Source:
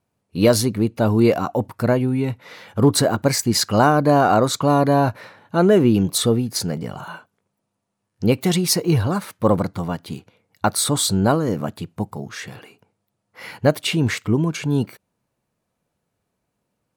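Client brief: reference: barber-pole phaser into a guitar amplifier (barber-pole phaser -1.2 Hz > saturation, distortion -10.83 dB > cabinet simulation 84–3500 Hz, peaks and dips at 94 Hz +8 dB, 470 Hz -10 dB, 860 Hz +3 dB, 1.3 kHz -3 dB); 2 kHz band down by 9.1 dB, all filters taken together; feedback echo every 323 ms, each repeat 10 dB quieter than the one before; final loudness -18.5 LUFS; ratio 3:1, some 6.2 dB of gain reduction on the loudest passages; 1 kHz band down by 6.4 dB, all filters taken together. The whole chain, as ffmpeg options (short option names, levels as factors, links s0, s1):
-filter_complex "[0:a]equalizer=f=1000:t=o:g=-8.5,equalizer=f=2000:t=o:g=-8,acompressor=threshold=0.112:ratio=3,aecho=1:1:323|646|969|1292:0.316|0.101|0.0324|0.0104,asplit=2[s0][s1];[s1]afreqshift=-1.2[s2];[s0][s2]amix=inputs=2:normalize=1,asoftclip=threshold=0.0596,highpass=84,equalizer=f=94:t=q:w=4:g=8,equalizer=f=470:t=q:w=4:g=-10,equalizer=f=860:t=q:w=4:g=3,equalizer=f=1300:t=q:w=4:g=-3,lowpass=f=3500:w=0.5412,lowpass=f=3500:w=1.3066,volume=5.01"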